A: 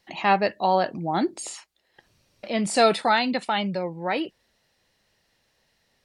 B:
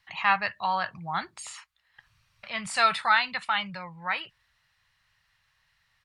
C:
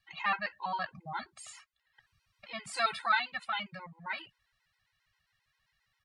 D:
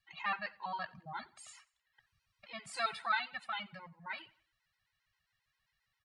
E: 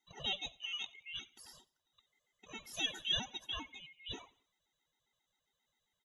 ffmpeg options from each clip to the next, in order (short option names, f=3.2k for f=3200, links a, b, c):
-af "firequalizer=gain_entry='entry(120,0);entry(280,-27);entry(1100,4);entry(5300,-6)':delay=0.05:min_phase=1"
-af "afftfilt=real='re*gt(sin(2*PI*7.5*pts/sr)*(1-2*mod(floor(b*sr/1024/270),2)),0)':imag='im*gt(sin(2*PI*7.5*pts/sr)*(1-2*mod(floor(b*sr/1024/270),2)),0)':win_size=1024:overlap=0.75,volume=-4dB"
-af "aecho=1:1:90|180|270:0.075|0.0307|0.0126,volume=-5dB"
-af "afftfilt=real='real(if(lt(b,920),b+92*(1-2*mod(floor(b/92),2)),b),0)':imag='imag(if(lt(b,920),b+92*(1-2*mod(floor(b/92),2)),b),0)':win_size=2048:overlap=0.75,volume=-2dB"